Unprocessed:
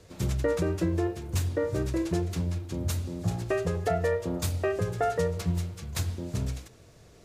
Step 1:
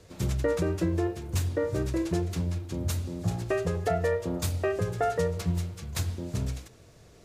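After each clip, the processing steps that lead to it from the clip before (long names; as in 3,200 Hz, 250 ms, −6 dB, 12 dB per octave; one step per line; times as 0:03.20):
no processing that can be heard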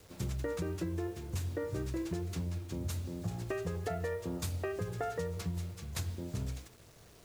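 dynamic equaliser 600 Hz, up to −5 dB, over −45 dBFS, Q 3.4
downward compressor 6 to 1, threshold −27 dBFS, peak gain reduction 5.5 dB
bit reduction 9 bits
level −5 dB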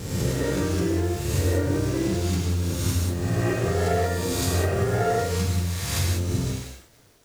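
peak hold with a rise ahead of every peak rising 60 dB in 1.45 s
dead-zone distortion −52 dBFS
reverb whose tail is shaped and stops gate 220 ms flat, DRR −1.5 dB
level +6.5 dB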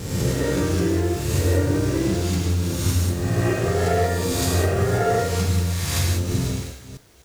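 delay that plays each chunk backwards 249 ms, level −12 dB
level +2.5 dB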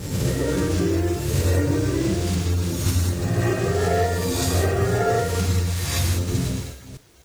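spectral magnitudes quantised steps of 15 dB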